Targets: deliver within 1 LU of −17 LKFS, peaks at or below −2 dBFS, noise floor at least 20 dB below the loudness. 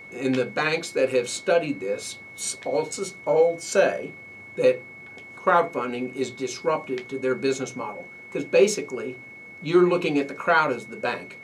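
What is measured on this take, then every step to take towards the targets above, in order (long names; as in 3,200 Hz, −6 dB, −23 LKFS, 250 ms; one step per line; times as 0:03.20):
interfering tone 2,200 Hz; level of the tone −41 dBFS; integrated loudness −24.5 LKFS; sample peak −7.5 dBFS; target loudness −17.0 LKFS
→ notch filter 2,200 Hz, Q 30
level +7.5 dB
brickwall limiter −2 dBFS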